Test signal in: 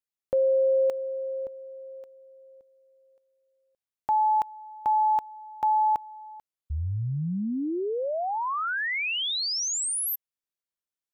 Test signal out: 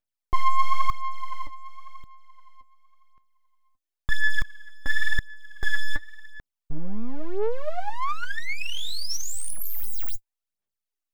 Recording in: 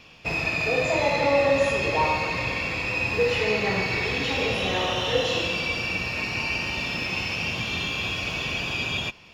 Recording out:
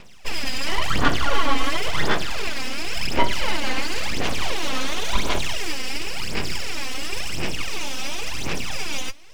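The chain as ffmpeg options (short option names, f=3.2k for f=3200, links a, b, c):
-af "lowshelf=f=350:g=3.5,aeval=exprs='abs(val(0))':c=same,aphaser=in_gain=1:out_gain=1:delay=3.9:decay=0.69:speed=0.94:type=sinusoidal,volume=-1.5dB"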